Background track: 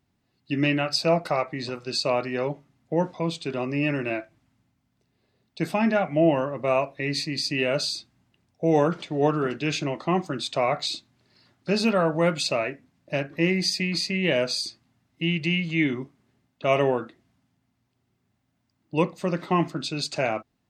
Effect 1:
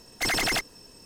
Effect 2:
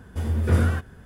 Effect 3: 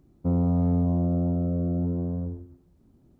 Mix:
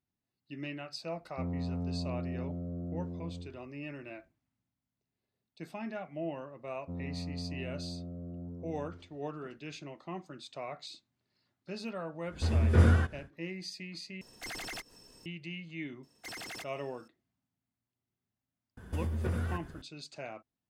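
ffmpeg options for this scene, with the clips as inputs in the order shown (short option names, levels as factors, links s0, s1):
-filter_complex "[3:a]asplit=2[s0][s1];[2:a]asplit=2[s2][s3];[1:a]asplit=2[s4][s5];[0:a]volume=0.133[s6];[s2]lowpass=7800[s7];[s4]acompressor=mode=upward:threshold=0.0282:ratio=2.5:attack=3.2:release=140:knee=2.83:detection=peak[s8];[s5]highpass=69[s9];[s3]acompressor=threshold=0.0282:ratio=4:attack=25:release=103:knee=1:detection=peak[s10];[s6]asplit=2[s11][s12];[s11]atrim=end=14.214[s13];[s8]atrim=end=1.05,asetpts=PTS-STARTPTS,volume=0.168[s14];[s12]atrim=start=15.256[s15];[s0]atrim=end=3.19,asetpts=PTS-STARTPTS,volume=0.237,afade=t=in:d=0.004:c=hsin,afade=t=out:st=3.186:d=0.004:c=hsin,adelay=1130[s16];[s1]atrim=end=3.19,asetpts=PTS-STARTPTS,volume=0.15,afade=t=in:d=0.004:c=hsin,afade=t=out:st=3.186:d=0.004:c=hsin,adelay=6630[s17];[s7]atrim=end=1.05,asetpts=PTS-STARTPTS,volume=0.75,afade=t=in:d=0.1,afade=t=out:st=0.95:d=0.1,adelay=12260[s18];[s9]atrim=end=1.05,asetpts=PTS-STARTPTS,volume=0.133,afade=t=in:d=0.004:c=hsin,afade=t=out:st=1.046:d=0.004:c=hsin,adelay=16030[s19];[s10]atrim=end=1.05,asetpts=PTS-STARTPTS,volume=0.708,afade=t=in:d=0.004:c=hsin,afade=t=out:st=1.046:d=0.004:c=hsin,adelay=18770[s20];[s13][s14]acrossfade=d=0.004:c1=hsin:c2=hsin[s21];[s21][s15]acrossfade=d=0.004:c1=hsin:c2=hsin[s22];[s22][s16][s17][s18][s19][s20]amix=inputs=6:normalize=0"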